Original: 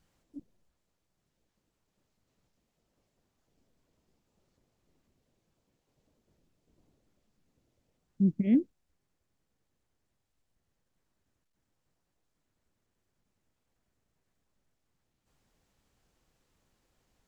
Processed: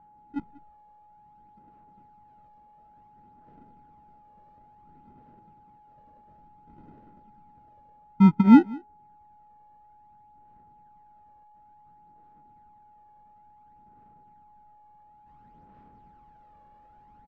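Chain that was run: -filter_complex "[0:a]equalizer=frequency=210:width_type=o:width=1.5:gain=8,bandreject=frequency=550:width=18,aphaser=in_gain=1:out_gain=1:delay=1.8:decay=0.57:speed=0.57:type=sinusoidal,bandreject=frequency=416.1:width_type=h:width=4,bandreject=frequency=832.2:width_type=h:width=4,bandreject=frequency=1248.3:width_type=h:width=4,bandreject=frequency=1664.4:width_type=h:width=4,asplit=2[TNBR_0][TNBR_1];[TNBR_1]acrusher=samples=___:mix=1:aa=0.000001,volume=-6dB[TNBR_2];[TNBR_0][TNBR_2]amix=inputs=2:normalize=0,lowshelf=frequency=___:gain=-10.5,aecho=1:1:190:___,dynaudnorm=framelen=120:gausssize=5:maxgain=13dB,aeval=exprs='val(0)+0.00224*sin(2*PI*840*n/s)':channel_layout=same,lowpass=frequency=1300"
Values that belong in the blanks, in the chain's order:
39, 480, 0.0668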